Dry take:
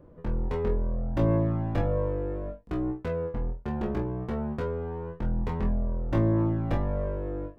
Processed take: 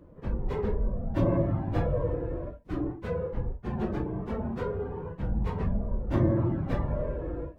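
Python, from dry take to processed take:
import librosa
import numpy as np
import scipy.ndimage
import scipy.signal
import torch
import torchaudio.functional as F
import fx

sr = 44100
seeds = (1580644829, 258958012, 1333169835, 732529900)

y = fx.phase_scramble(x, sr, seeds[0], window_ms=50)
y = y * librosa.db_to_amplitude(-1.0)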